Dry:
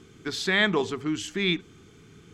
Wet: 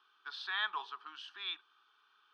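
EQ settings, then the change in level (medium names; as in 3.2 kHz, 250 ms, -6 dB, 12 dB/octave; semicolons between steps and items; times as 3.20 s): high-pass 830 Hz 24 dB/octave; tape spacing loss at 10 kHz 25 dB; static phaser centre 2.1 kHz, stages 6; -1.5 dB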